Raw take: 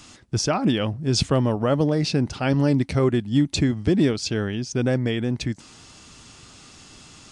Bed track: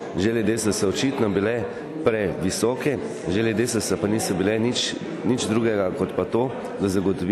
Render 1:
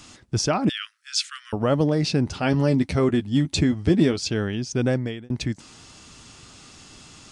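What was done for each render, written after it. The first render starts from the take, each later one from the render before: 0.69–1.53 s: steep high-pass 1.3 kHz 72 dB/octave; 2.25–4.20 s: doubling 12 ms -8.5 dB; 4.90–5.30 s: fade out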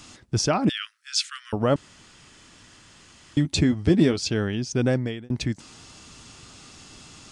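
1.76–3.37 s: room tone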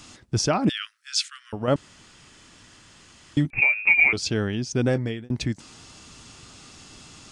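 1.28–1.68 s: feedback comb 95 Hz, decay 1.5 s, mix 50%; 3.50–4.13 s: frequency inversion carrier 2.6 kHz; 4.85–5.25 s: doubling 18 ms -12 dB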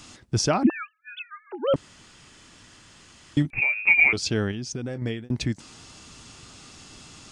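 0.63–1.74 s: formants replaced by sine waves; 3.42–3.88 s: compression 1.5:1, threshold -25 dBFS; 4.51–5.02 s: compression, threshold -28 dBFS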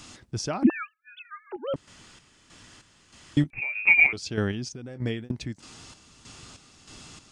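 square tremolo 1.6 Hz, depth 60%, duty 50%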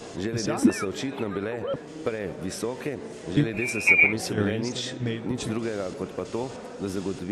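add bed track -8.5 dB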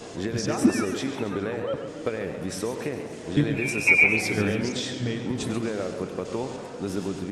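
echo from a far wall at 17 m, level -12 dB; modulated delay 137 ms, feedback 57%, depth 139 cents, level -10.5 dB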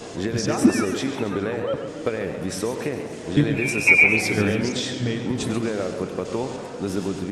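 trim +3.5 dB; peak limiter -3 dBFS, peak gain reduction 1.5 dB

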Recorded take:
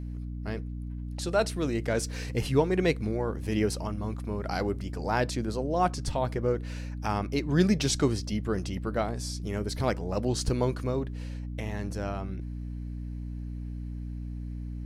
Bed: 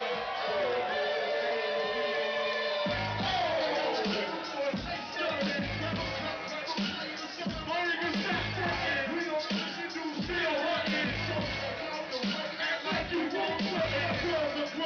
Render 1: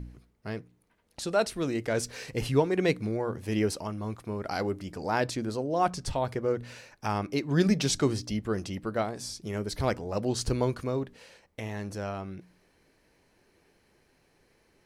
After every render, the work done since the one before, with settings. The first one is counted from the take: de-hum 60 Hz, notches 5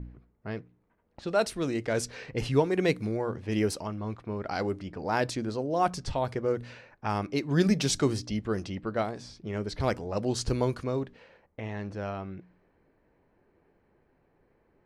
level-controlled noise filter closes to 1.3 kHz, open at -24 dBFS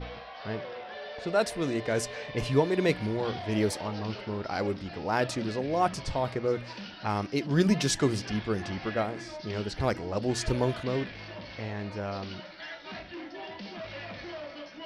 add bed -10 dB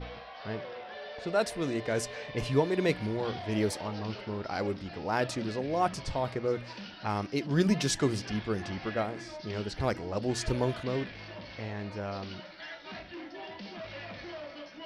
trim -2 dB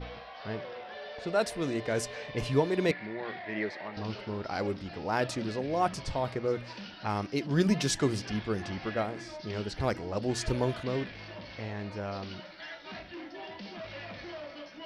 2.91–3.97 s: cabinet simulation 270–3700 Hz, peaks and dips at 270 Hz -7 dB, 480 Hz -8 dB, 900 Hz -5 dB, 1.3 kHz -4 dB, 1.9 kHz +10 dB, 3.1 kHz -8 dB

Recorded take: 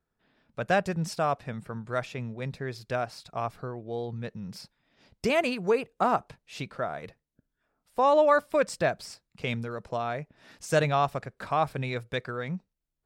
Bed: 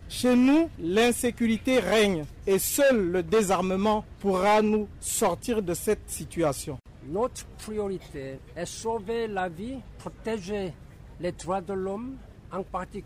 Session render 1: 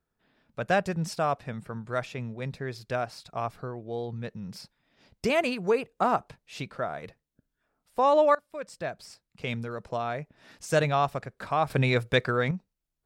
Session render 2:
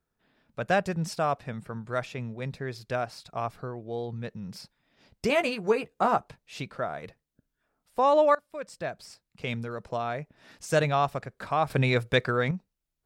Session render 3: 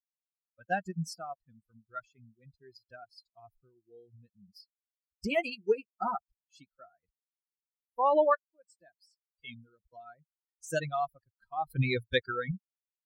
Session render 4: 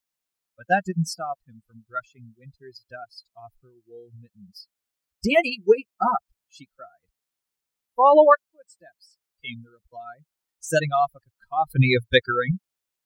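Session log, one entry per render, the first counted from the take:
8.35–9.71 s: fade in, from -23.5 dB; 11.70–12.51 s: gain +8 dB
5.28–6.18 s: doubling 14 ms -7.5 dB
expander on every frequency bin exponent 3
trim +10.5 dB

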